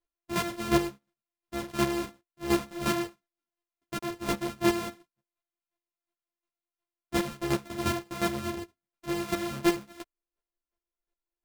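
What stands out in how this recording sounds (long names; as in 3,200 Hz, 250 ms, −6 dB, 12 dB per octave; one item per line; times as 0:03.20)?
a buzz of ramps at a fixed pitch in blocks of 128 samples
chopped level 2.8 Hz, depth 65%, duty 15%
a shimmering, thickened sound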